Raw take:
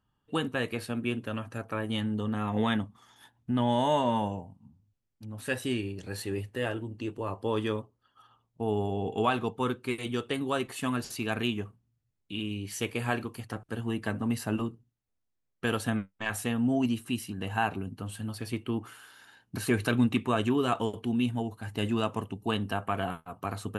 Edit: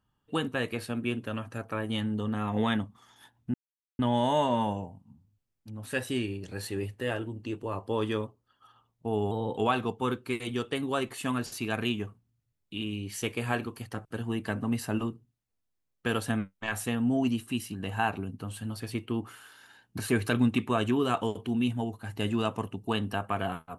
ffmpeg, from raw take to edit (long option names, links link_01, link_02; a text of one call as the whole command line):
ffmpeg -i in.wav -filter_complex "[0:a]asplit=4[link_01][link_02][link_03][link_04];[link_01]atrim=end=3.54,asetpts=PTS-STARTPTS,afade=type=out:start_time=3.536:duration=0.004:curve=hsin,apad=pad_dur=0.45[link_05];[link_02]atrim=start=3.54:end=8.864,asetpts=PTS-STARTPTS,afade=type=in:duration=0.004:curve=hsin[link_06];[link_03]atrim=start=8.86:end=9.16,asetpts=PTS-STARTPTS,asetrate=49392,aresample=44100,atrim=end_sample=11812,asetpts=PTS-STARTPTS[link_07];[link_04]atrim=start=9.156[link_08];[link_05][link_06]concat=n=2:v=0:a=1[link_09];[link_09][link_07]acrossfade=duration=0.004:curve1=hsin:curve2=hsin[link_10];[link_10][link_08]acrossfade=duration=0.004:curve1=hsin:curve2=hsin" out.wav